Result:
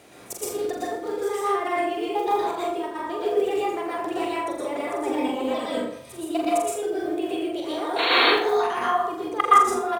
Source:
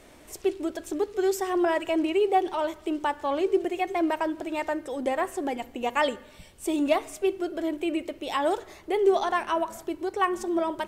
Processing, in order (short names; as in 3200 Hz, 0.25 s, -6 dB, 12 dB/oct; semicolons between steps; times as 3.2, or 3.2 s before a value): HPF 78 Hz 24 dB/oct; level quantiser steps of 20 dB; painted sound noise, 8.66–8.91, 230–4100 Hz -32 dBFS; modulation noise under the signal 33 dB; step gate "x.xx.x.xx.x." 107 bpm -12 dB; doubler 50 ms -7 dB; flutter echo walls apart 7.5 m, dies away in 0.37 s; plate-style reverb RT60 0.67 s, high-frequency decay 0.45×, pre-delay 0.115 s, DRR -6.5 dB; speed mistake 44.1 kHz file played as 48 kHz; gain +7.5 dB